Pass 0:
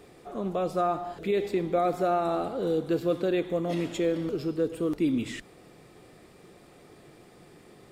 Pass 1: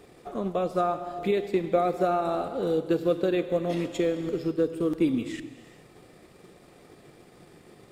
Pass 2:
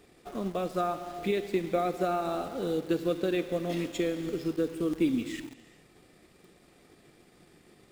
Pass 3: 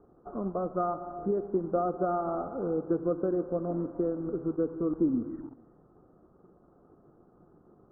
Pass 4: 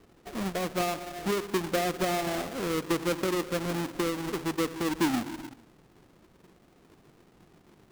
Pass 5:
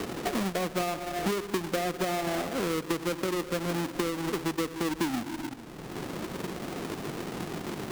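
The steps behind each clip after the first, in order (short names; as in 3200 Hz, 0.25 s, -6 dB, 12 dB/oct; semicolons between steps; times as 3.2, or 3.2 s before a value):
transient shaper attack +4 dB, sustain -5 dB; non-linear reverb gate 0.45 s flat, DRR 11.5 dB
graphic EQ 125/500/1000 Hz -5/-5/-4 dB; in parallel at -7 dB: bit-crush 7-bit; on the sum: gain -3 dB
steep low-pass 1400 Hz 72 dB/oct
half-waves squared off; gain -3 dB
three-band squash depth 100%; gain -1 dB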